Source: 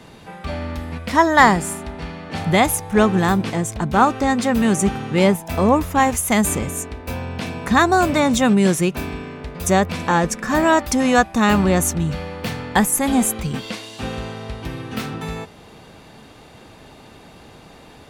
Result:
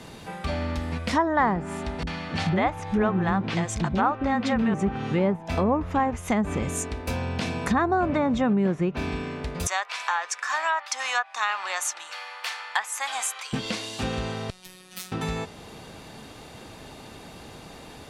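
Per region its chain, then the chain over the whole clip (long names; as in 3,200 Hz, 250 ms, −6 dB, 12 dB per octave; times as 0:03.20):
0:02.03–0:04.74: low-pass filter 3,100 Hz 6 dB per octave + high-shelf EQ 2,100 Hz +9 dB + multiband delay without the direct sound lows, highs 40 ms, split 410 Hz
0:09.67–0:13.53: high-pass filter 910 Hz 24 dB per octave + high-shelf EQ 8,000 Hz −8.5 dB
0:14.50–0:15.12: high-pass filter 46 Hz + first-order pre-emphasis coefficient 0.9 + phases set to zero 184 Hz
whole clip: treble cut that deepens with the level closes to 1,500 Hz, closed at −13 dBFS; bass and treble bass 0 dB, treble +4 dB; downward compressor 2 to 1, threshold −25 dBFS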